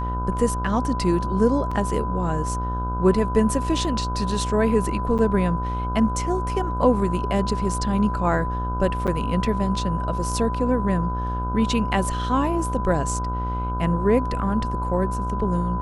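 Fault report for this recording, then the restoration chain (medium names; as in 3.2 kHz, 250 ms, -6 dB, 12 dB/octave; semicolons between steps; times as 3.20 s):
buzz 60 Hz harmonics 26 -27 dBFS
whine 1 kHz -28 dBFS
1.71 s: dropout 4.8 ms
5.18–5.19 s: dropout 8.2 ms
9.07–9.08 s: dropout 7.6 ms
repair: band-stop 1 kHz, Q 30; de-hum 60 Hz, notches 26; interpolate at 1.71 s, 4.8 ms; interpolate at 5.18 s, 8.2 ms; interpolate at 9.07 s, 7.6 ms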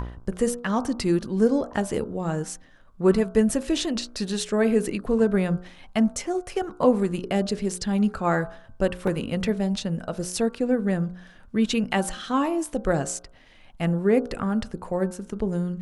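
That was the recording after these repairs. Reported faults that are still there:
nothing left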